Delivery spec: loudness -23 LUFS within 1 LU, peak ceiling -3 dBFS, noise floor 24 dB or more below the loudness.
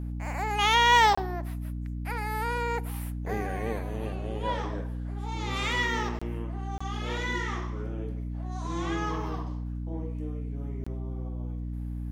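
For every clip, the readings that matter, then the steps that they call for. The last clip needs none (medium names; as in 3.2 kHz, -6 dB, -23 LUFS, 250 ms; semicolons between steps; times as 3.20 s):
dropouts 4; longest dropout 25 ms; hum 60 Hz; highest harmonic 300 Hz; hum level -31 dBFS; loudness -30.0 LUFS; peak level -10.5 dBFS; loudness target -23.0 LUFS
-> interpolate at 1.15/6.19/6.78/10.84 s, 25 ms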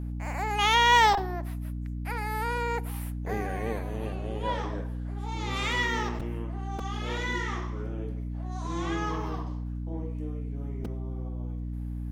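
dropouts 0; hum 60 Hz; highest harmonic 300 Hz; hum level -31 dBFS
-> hum notches 60/120/180/240/300 Hz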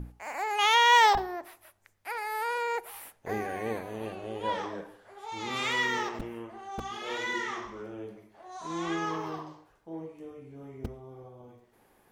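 hum not found; loudness -29.0 LUFS; peak level -11.5 dBFS; loudness target -23.0 LUFS
-> trim +6 dB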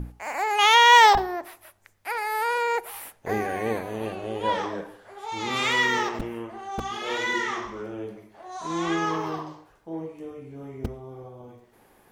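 loudness -23.0 LUFS; peak level -5.5 dBFS; noise floor -59 dBFS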